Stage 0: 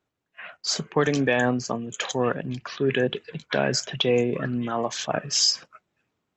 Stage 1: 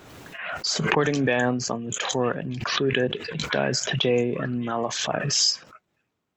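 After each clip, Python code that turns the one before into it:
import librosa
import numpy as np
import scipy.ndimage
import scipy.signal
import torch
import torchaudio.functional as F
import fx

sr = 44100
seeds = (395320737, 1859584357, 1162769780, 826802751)

y = fx.pre_swell(x, sr, db_per_s=36.0)
y = F.gain(torch.from_numpy(y), -1.0).numpy()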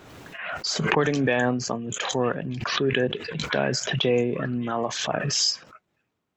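y = fx.high_shelf(x, sr, hz=6200.0, db=-4.5)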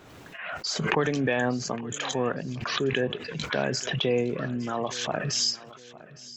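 y = fx.echo_feedback(x, sr, ms=861, feedback_pct=37, wet_db=-19)
y = F.gain(torch.from_numpy(y), -3.0).numpy()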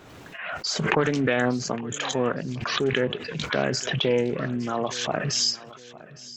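y = fx.doppler_dist(x, sr, depth_ms=0.22)
y = F.gain(torch.from_numpy(y), 2.5).numpy()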